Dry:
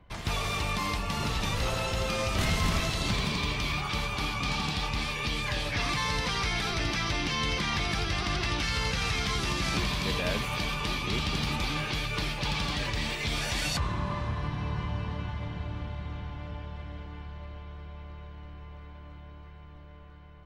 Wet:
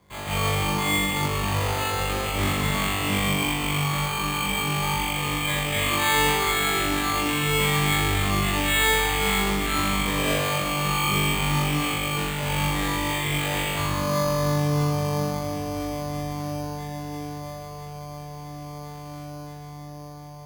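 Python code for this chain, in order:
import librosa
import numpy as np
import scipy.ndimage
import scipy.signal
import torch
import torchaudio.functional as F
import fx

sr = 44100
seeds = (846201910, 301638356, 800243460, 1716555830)

p1 = fx.highpass(x, sr, hz=150.0, slope=6)
p2 = fx.high_shelf(p1, sr, hz=4900.0, db=9.5)
p3 = fx.notch(p2, sr, hz=1500.0, q=14.0)
p4 = p3 + fx.room_flutter(p3, sr, wall_m=3.5, rt60_s=1.4, dry=0)
y = np.repeat(scipy.signal.resample_poly(p4, 1, 8), 8)[:len(p4)]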